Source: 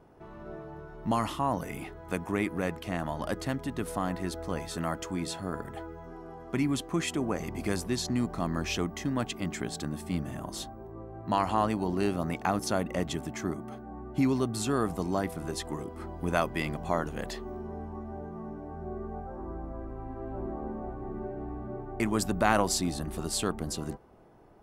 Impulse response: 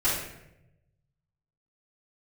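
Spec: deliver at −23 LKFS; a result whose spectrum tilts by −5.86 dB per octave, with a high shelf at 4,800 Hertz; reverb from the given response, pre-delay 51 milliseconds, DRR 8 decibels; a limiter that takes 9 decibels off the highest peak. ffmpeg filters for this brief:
-filter_complex "[0:a]highshelf=frequency=4800:gain=-9,alimiter=limit=-18dB:level=0:latency=1,asplit=2[link_01][link_02];[1:a]atrim=start_sample=2205,adelay=51[link_03];[link_02][link_03]afir=irnorm=-1:irlink=0,volume=-20dB[link_04];[link_01][link_04]amix=inputs=2:normalize=0,volume=10dB"

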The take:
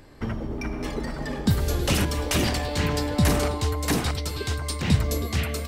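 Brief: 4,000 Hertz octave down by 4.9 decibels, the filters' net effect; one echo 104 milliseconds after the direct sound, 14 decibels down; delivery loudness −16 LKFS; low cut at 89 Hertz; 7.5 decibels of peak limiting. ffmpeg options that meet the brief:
ffmpeg -i in.wav -af "highpass=89,equalizer=frequency=4000:width_type=o:gain=-6.5,alimiter=limit=-18dB:level=0:latency=1,aecho=1:1:104:0.2,volume=13dB" out.wav

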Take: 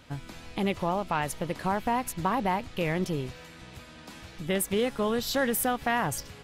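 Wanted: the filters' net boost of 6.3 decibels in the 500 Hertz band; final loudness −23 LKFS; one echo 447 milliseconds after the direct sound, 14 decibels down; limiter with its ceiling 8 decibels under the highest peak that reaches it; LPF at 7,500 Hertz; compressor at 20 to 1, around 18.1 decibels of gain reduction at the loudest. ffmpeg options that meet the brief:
ffmpeg -i in.wav -af "lowpass=7500,equalizer=frequency=500:width_type=o:gain=7.5,acompressor=threshold=-35dB:ratio=20,alimiter=level_in=8dB:limit=-24dB:level=0:latency=1,volume=-8dB,aecho=1:1:447:0.2,volume=20dB" out.wav

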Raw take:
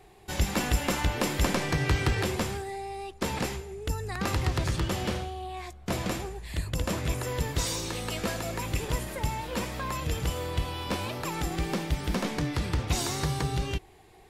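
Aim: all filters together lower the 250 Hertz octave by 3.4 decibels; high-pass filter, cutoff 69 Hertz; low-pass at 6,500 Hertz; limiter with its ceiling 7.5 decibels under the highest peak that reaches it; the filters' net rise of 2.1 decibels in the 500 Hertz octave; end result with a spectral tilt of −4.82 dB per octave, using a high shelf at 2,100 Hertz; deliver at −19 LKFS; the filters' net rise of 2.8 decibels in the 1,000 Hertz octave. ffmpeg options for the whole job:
ffmpeg -i in.wav -af "highpass=69,lowpass=6500,equalizer=frequency=250:width_type=o:gain=-6.5,equalizer=frequency=500:width_type=o:gain=4,equalizer=frequency=1000:width_type=o:gain=4,highshelf=frequency=2100:gain=-7,volume=14dB,alimiter=limit=-7dB:level=0:latency=1" out.wav

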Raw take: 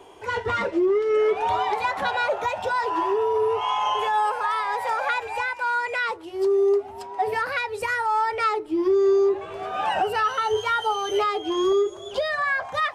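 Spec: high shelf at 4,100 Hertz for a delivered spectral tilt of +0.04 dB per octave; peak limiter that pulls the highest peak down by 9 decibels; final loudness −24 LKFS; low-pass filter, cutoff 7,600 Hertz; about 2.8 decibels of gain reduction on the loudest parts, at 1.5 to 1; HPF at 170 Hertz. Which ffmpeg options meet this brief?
ffmpeg -i in.wav -af "highpass=170,lowpass=7600,highshelf=frequency=4100:gain=4.5,acompressor=threshold=-25dB:ratio=1.5,volume=6dB,alimiter=limit=-17dB:level=0:latency=1" out.wav

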